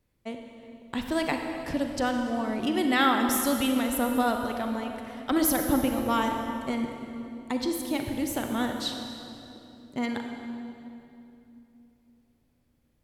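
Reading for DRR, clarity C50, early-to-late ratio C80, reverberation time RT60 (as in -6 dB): 3.5 dB, 4.0 dB, 5.0 dB, 2.9 s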